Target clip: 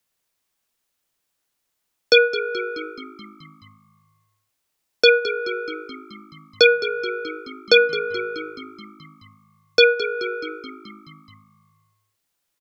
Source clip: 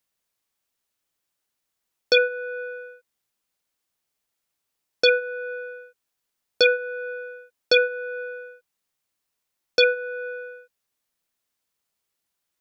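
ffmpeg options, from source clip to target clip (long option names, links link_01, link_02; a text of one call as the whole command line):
ffmpeg -i in.wav -filter_complex "[0:a]afreqshift=-19,asplit=2[link_01][link_02];[link_02]asplit=7[link_03][link_04][link_05][link_06][link_07][link_08][link_09];[link_03]adelay=214,afreqshift=-53,volume=-14dB[link_10];[link_04]adelay=428,afreqshift=-106,volume=-17.9dB[link_11];[link_05]adelay=642,afreqshift=-159,volume=-21.8dB[link_12];[link_06]adelay=856,afreqshift=-212,volume=-25.6dB[link_13];[link_07]adelay=1070,afreqshift=-265,volume=-29.5dB[link_14];[link_08]adelay=1284,afreqshift=-318,volume=-33.4dB[link_15];[link_09]adelay=1498,afreqshift=-371,volume=-37.3dB[link_16];[link_10][link_11][link_12][link_13][link_14][link_15][link_16]amix=inputs=7:normalize=0[link_17];[link_01][link_17]amix=inputs=2:normalize=0,volume=4dB" out.wav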